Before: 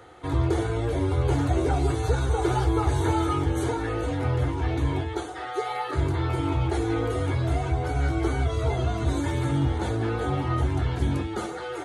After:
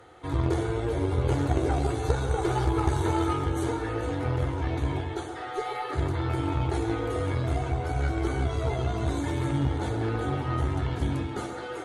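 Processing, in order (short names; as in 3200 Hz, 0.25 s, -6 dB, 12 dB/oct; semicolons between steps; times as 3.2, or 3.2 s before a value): tape echo 0.134 s, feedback 66%, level -7.5 dB, low-pass 2600 Hz; added harmonics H 2 -16 dB, 3 -16 dB, 5 -29 dB, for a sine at -11 dBFS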